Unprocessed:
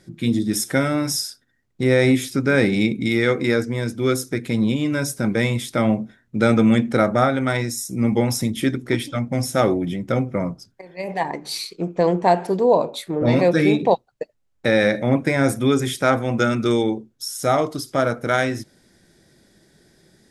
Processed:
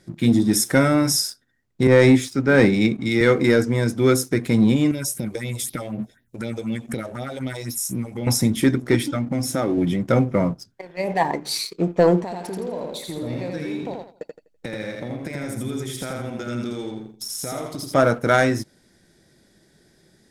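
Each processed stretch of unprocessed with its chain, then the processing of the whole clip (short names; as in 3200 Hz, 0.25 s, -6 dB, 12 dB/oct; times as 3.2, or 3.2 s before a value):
1.87–3.21 LPF 8300 Hz + three-band expander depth 100%
4.91–8.27 high shelf 6000 Hz +11.5 dB + compressor 12:1, threshold -25 dBFS + phaser stages 4, 4 Hz, lowest notch 180–1500 Hz
9.03–9.78 bell 290 Hz +9 dB 0.38 oct + compressor 3:1, threshold -25 dBFS
12.23–17.94 bell 1000 Hz -6 dB 2.2 oct + compressor 8:1, threshold -31 dBFS + feedback echo 83 ms, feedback 36%, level -3 dB
whole clip: dynamic EQ 3000 Hz, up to -5 dB, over -42 dBFS, Q 1.8; sample leveller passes 1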